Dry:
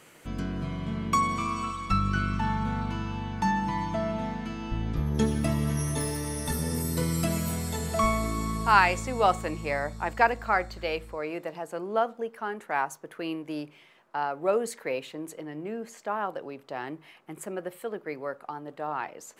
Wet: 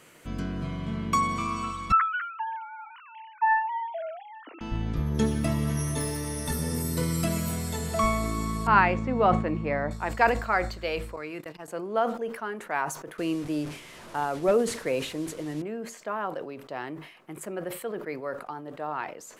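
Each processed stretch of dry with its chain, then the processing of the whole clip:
1.92–4.61 s: formants replaced by sine waves + elliptic high-pass 230 Hz
8.67–9.91 s: low-pass 2.3 kHz + peaking EQ 210 Hz +7.5 dB 1.5 oct
11.16–11.68 s: gate -39 dBFS, range -36 dB + peaking EQ 610 Hz -9 dB 1.1 oct
13.18–15.62 s: one-bit delta coder 64 kbps, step -41.5 dBFS + bass shelf 360 Hz +8.5 dB
whole clip: band-stop 820 Hz, Q 15; decay stretcher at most 89 dB/s

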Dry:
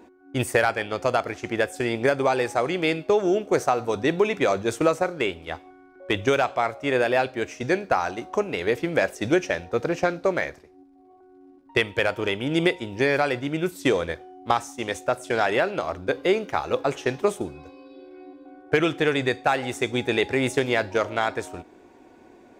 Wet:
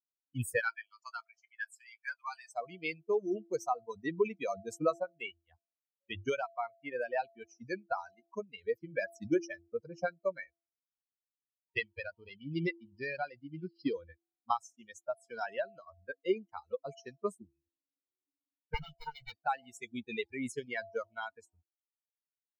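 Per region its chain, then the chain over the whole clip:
0.60–2.52 s: high-pass 870 Hz 24 dB/octave + doubling 27 ms -9.5 dB
11.79–13.94 s: CVSD coder 64 kbps + careless resampling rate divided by 4×, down none, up filtered
18.74–19.32 s: comb filter that takes the minimum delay 1.4 ms + de-hum 63.77 Hz, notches 13
whole clip: expander on every frequency bin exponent 3; band-stop 3.5 kHz, Q 7.6; de-hum 337.8 Hz, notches 2; trim -4.5 dB

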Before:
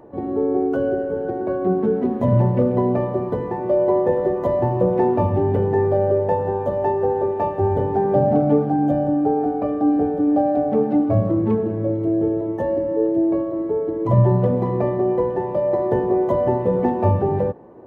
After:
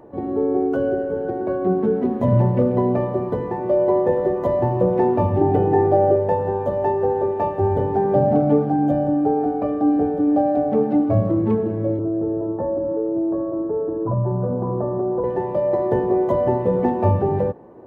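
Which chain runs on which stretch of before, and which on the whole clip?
5.41–6.16 s: comb 6.6 ms, depth 37% + small resonant body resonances 340/750/2500 Hz, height 14 dB, ringing for 85 ms
11.99–15.24 s: compression 3:1, threshold -19 dBFS + steep low-pass 1.6 kHz 96 dB/octave
whole clip: none

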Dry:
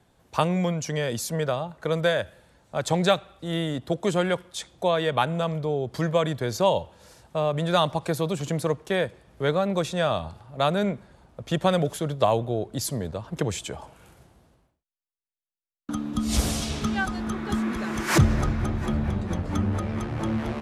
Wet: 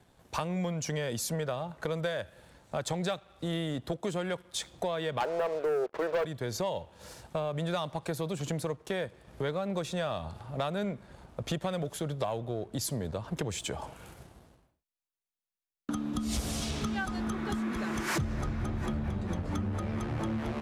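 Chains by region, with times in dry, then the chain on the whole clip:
5.20–6.25 s: Chebyshev band-pass 420–2200 Hz, order 3 + tilt EQ -3.5 dB/octave + waveshaping leveller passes 3
whole clip: compression 4:1, threshold -35 dBFS; waveshaping leveller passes 1

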